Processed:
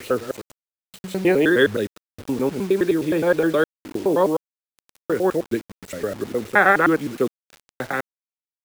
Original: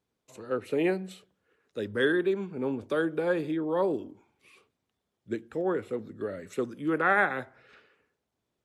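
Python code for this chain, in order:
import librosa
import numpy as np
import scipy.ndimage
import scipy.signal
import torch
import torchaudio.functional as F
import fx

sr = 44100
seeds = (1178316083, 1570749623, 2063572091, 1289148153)

y = fx.block_reorder(x, sr, ms=104.0, group=7)
y = fx.quant_dither(y, sr, seeds[0], bits=8, dither='none')
y = F.gain(torch.from_numpy(y), 9.0).numpy()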